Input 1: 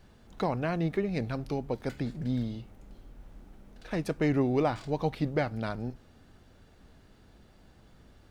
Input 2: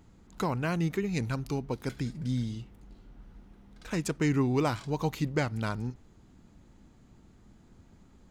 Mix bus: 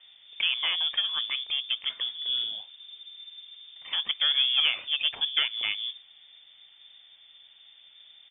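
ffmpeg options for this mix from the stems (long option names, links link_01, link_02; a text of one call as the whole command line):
ffmpeg -i stem1.wav -i stem2.wav -filter_complex "[0:a]highshelf=frequency=4000:gain=-9,asoftclip=type=tanh:threshold=-29.5dB,volume=2.5dB,asplit=2[link_01][link_02];[1:a]volume=-1,adelay=0.4,volume=2dB[link_03];[link_02]apad=whole_len=366313[link_04];[link_03][link_04]sidechaingate=range=-33dB:threshold=-43dB:ratio=16:detection=peak[link_05];[link_01][link_05]amix=inputs=2:normalize=0,lowpass=frequency=3100:width_type=q:width=0.5098,lowpass=frequency=3100:width_type=q:width=0.6013,lowpass=frequency=3100:width_type=q:width=0.9,lowpass=frequency=3100:width_type=q:width=2.563,afreqshift=-3600" out.wav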